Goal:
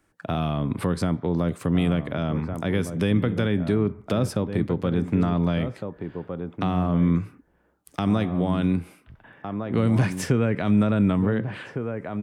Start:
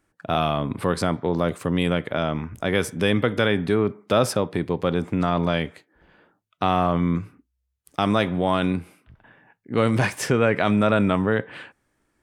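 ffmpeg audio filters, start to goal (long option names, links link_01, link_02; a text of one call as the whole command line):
ffmpeg -i in.wav -filter_complex "[0:a]asplit=2[link_01][link_02];[link_02]adelay=1458,volume=-10dB,highshelf=frequency=4000:gain=-32.8[link_03];[link_01][link_03]amix=inputs=2:normalize=0,acrossover=split=300[link_04][link_05];[link_05]acompressor=threshold=-34dB:ratio=3[link_06];[link_04][link_06]amix=inputs=2:normalize=0,volume=2.5dB" out.wav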